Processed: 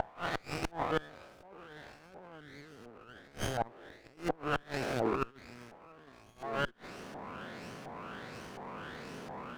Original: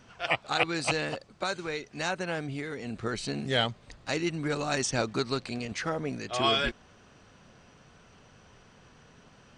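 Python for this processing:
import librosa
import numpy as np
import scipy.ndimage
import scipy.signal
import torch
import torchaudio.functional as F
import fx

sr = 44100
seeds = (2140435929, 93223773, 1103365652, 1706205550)

y = fx.spec_swells(x, sr, rise_s=2.38)
y = scipy.signal.sosfilt(scipy.signal.butter(2, 240.0, 'highpass', fs=sr, output='sos'), y)
y = fx.low_shelf(y, sr, hz=470.0, db=8.0)
y = fx.over_compress(y, sr, threshold_db=-28.0, ratio=-0.5)
y = fx.filter_lfo_lowpass(y, sr, shape='saw_up', hz=1.4, low_hz=780.0, high_hz=4400.0, q=5.0)
y = fx.gate_flip(y, sr, shuts_db=-18.0, range_db=-29)
y = fx.running_max(y, sr, window=9)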